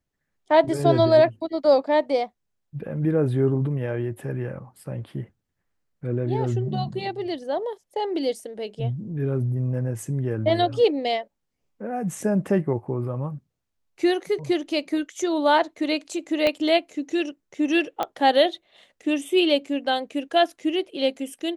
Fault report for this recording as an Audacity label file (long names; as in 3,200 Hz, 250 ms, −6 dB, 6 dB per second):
16.470000	16.470000	click −10 dBFS
18.030000	18.030000	click −12 dBFS